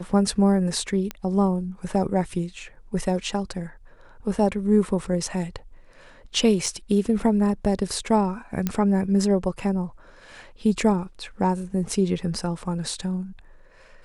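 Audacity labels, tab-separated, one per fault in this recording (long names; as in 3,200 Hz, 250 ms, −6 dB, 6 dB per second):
1.110000	1.110000	click −15 dBFS
6.660000	6.660000	drop-out 4 ms
8.670000	8.670000	click −10 dBFS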